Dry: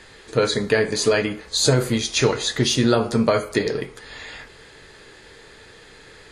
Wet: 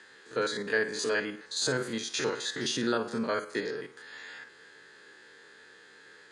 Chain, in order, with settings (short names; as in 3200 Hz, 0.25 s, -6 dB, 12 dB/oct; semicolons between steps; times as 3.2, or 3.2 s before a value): stepped spectrum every 50 ms; speaker cabinet 230–9500 Hz, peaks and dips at 660 Hz -6 dB, 1600 Hz +9 dB, 2300 Hz -4 dB; gain -8.5 dB